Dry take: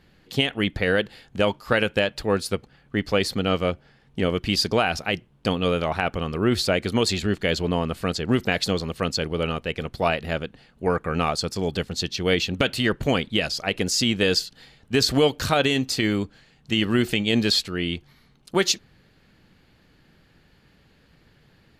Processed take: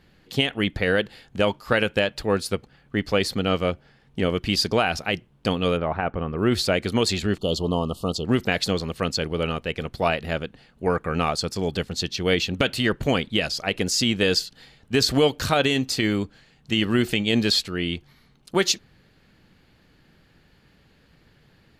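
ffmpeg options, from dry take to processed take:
ffmpeg -i in.wav -filter_complex "[0:a]asplit=3[link_01][link_02][link_03];[link_01]afade=type=out:start_time=5.76:duration=0.02[link_04];[link_02]lowpass=1600,afade=type=in:start_time=5.76:duration=0.02,afade=type=out:start_time=6.37:duration=0.02[link_05];[link_03]afade=type=in:start_time=6.37:duration=0.02[link_06];[link_04][link_05][link_06]amix=inputs=3:normalize=0,asettb=1/sr,asplit=3[link_07][link_08][link_09];[link_07]atrim=end=7.384[link_10];[link_08]atrim=start=7.38:end=8.25,asetpts=PTS-STARTPTS,afade=type=in:duration=0.004:curve=qsin,afade=type=out:start_time=0.866:duration=0.004:curve=qsin,asuperstop=centerf=1900:order=12:qfactor=1.2[link_11];[link_09]atrim=start=8.246[link_12];[link_10][link_11]acrossfade=duration=0.004:curve1=hsin:curve2=qsin[link_13];[link_13][link_12]acrossfade=duration=0.004:curve1=qsin:curve2=hsin" out.wav

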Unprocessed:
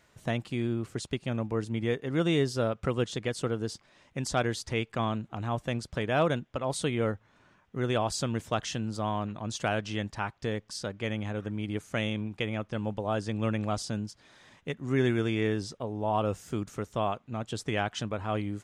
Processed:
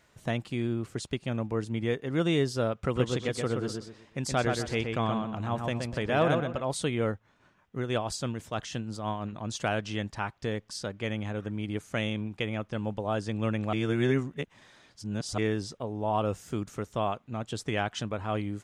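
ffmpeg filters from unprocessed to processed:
ffmpeg -i in.wav -filter_complex "[0:a]asettb=1/sr,asplit=3[link_01][link_02][link_03];[link_01]atrim=end=2.744[link_04];[link_02]atrim=start=2.74:end=6.61,asetpts=PTS-STARTPTS,afade=type=in:duration=0.004:curve=qsin,afade=type=out:start_time=3.866:duration=0.004:curve=qsin,asplit=2[link_05][link_06];[link_06]adelay=124,lowpass=frequency=3100:poles=1,volume=-4dB,asplit=2[link_07][link_08];[link_08]adelay=124,lowpass=frequency=3100:poles=1,volume=0.33,asplit=2[link_09][link_10];[link_10]adelay=124,lowpass=frequency=3100:poles=1,volume=0.33,asplit=2[link_11][link_12];[link_12]adelay=124,lowpass=frequency=3100:poles=1,volume=0.33[link_13];[link_05][link_07][link_09][link_11][link_13]amix=inputs=5:normalize=0,atrim=end_sample=170667[link_14];[link_03]atrim=start=6.606[link_15];[link_04][link_14]acrossfade=duration=0.004:curve1=hsin:curve2=qsin[link_16];[link_16][link_15]acrossfade=duration=0.004:curve1=qsin:curve2=hsin,asettb=1/sr,asplit=3[link_17][link_18][link_19];[link_17]atrim=end=7.134[link_20];[link_18]atrim=start=7.13:end=9.33,asetpts=PTS-STARTPTS,afade=type=in:duration=0.004:curve=qsin,afade=type=out:start_time=2.196:duration=0.004:curve=qsin,tremolo=f=6.1:d=0.49[link_21];[link_19]atrim=start=9.326[link_22];[link_20][link_21]acrossfade=duration=0.004:curve1=hsin:curve2=qsin[link_23];[link_23][link_22]acrossfade=duration=0.004:curve1=qsin:curve2=hsin,asplit=3[link_24][link_25][link_26];[link_24]atrim=end=13.732[link_27];[link_25]atrim=start=13.728:end=15.382,asetpts=PTS-STARTPTS,areverse[link_28];[link_26]atrim=start=15.378[link_29];[link_27][link_28]acrossfade=duration=0.004:curve1=hsin:curve2=hsin[link_30];[link_30][link_29]acrossfade=duration=0.004:curve1=hsin:curve2=hsin" out.wav

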